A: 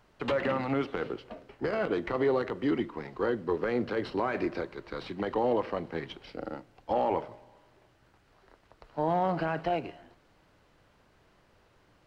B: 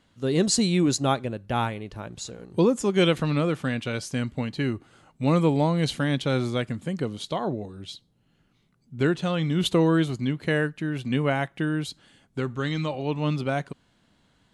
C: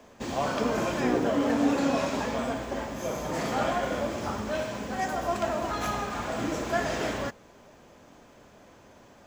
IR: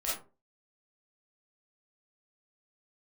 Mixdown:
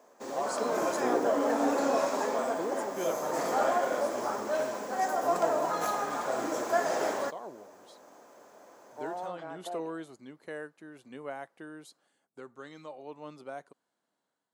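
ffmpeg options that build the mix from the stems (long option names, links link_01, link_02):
-filter_complex "[0:a]volume=-13dB[link_01];[1:a]volume=-15.5dB[link_02];[2:a]volume=-1.5dB[link_03];[link_01][link_02][link_03]amix=inputs=3:normalize=0,highpass=480,equalizer=frequency=2900:width_type=o:width=1.6:gain=-13,dynaudnorm=framelen=430:gausssize=3:maxgain=5.5dB"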